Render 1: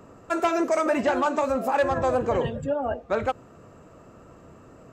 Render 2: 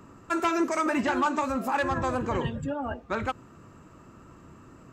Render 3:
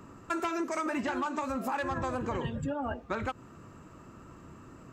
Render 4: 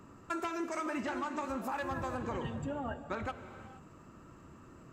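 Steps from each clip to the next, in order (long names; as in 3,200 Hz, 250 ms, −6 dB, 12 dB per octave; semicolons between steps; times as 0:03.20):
flat-topped bell 570 Hz −8.5 dB 1 octave
downward compressor, threshold −29 dBFS, peak gain reduction 8.5 dB
reverb whose tail is shaped and stops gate 500 ms flat, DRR 9.5 dB; level −4.5 dB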